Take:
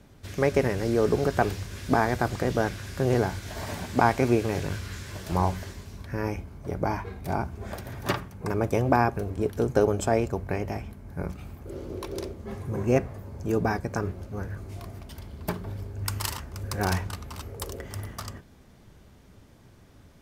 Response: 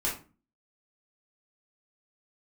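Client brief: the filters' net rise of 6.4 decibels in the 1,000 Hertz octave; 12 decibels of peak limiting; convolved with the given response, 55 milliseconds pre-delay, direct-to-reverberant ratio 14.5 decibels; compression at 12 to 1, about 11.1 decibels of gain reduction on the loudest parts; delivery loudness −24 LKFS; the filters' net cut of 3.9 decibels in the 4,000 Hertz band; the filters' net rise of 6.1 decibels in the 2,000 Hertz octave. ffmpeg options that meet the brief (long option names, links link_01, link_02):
-filter_complex "[0:a]equalizer=frequency=1000:width_type=o:gain=7.5,equalizer=frequency=2000:width_type=o:gain=6.5,equalizer=frequency=4000:width_type=o:gain=-8,acompressor=threshold=-21dB:ratio=12,alimiter=limit=-17.5dB:level=0:latency=1,asplit=2[link_01][link_02];[1:a]atrim=start_sample=2205,adelay=55[link_03];[link_02][link_03]afir=irnorm=-1:irlink=0,volume=-21.5dB[link_04];[link_01][link_04]amix=inputs=2:normalize=0,volume=8.5dB"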